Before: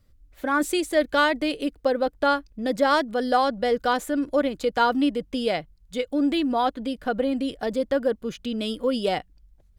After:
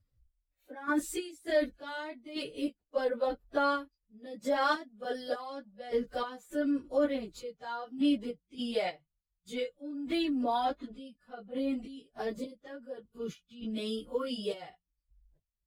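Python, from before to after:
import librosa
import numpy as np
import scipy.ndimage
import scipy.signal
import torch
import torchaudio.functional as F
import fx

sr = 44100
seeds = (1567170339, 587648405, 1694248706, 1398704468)

y = fx.spec_quant(x, sr, step_db=15)
y = fx.step_gate(y, sr, bpm=81, pattern='x..x.x..x.xx', floor_db=-12.0, edge_ms=4.5)
y = fx.noise_reduce_blind(y, sr, reduce_db=11)
y = fx.stretch_vocoder_free(y, sr, factor=1.6)
y = F.gain(torch.from_numpy(y), -5.0).numpy()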